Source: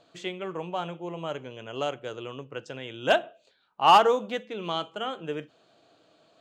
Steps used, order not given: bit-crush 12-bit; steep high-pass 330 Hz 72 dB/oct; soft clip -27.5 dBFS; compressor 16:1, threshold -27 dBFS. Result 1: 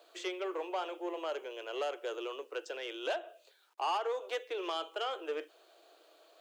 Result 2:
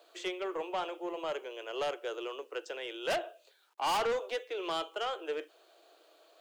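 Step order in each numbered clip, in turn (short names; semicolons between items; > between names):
bit-crush > compressor > soft clip > steep high-pass; bit-crush > steep high-pass > soft clip > compressor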